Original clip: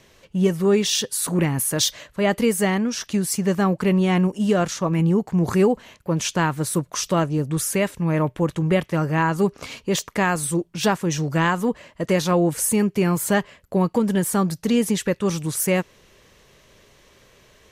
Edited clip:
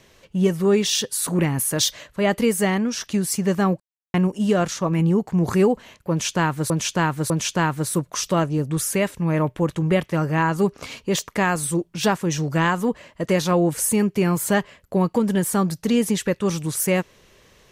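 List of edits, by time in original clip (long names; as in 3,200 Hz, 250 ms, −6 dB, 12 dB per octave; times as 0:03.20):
0:03.80–0:04.14: silence
0:06.10–0:06.70: repeat, 3 plays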